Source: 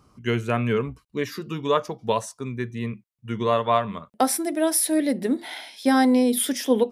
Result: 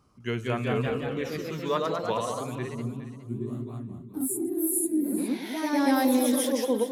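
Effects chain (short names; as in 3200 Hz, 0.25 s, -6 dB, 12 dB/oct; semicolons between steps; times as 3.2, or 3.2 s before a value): spectral gain 2.63–5.28, 400–6600 Hz -27 dB; echoes that change speed 0.202 s, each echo +1 st, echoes 3; on a send: echo with dull and thin repeats by turns 0.207 s, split 1000 Hz, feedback 51%, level -7 dB; on the sum: gain -6.5 dB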